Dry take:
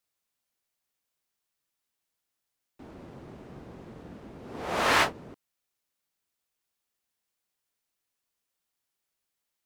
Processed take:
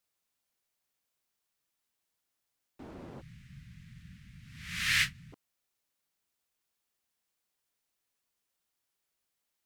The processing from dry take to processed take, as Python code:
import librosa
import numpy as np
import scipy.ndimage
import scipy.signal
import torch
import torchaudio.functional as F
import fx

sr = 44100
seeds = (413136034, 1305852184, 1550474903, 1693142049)

y = fx.ellip_bandstop(x, sr, low_hz=160.0, high_hz=1900.0, order=3, stop_db=80, at=(3.2, 5.32), fade=0.02)